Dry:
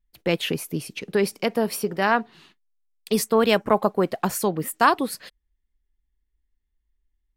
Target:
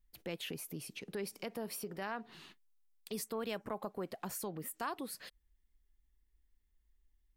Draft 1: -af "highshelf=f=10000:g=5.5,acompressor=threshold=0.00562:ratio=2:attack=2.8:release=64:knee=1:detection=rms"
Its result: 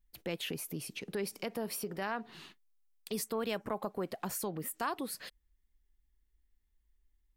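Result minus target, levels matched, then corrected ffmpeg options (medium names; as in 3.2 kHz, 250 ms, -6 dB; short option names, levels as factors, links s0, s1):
compression: peak gain reduction -4 dB
-af "highshelf=f=10000:g=5.5,acompressor=threshold=0.00224:ratio=2:attack=2.8:release=64:knee=1:detection=rms"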